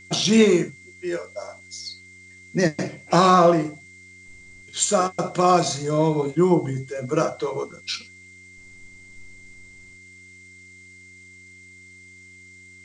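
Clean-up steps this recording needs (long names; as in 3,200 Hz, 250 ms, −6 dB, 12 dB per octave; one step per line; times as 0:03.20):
hum removal 92.4 Hz, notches 4
notch filter 2,100 Hz, Q 30
noise reduction from a noise print 18 dB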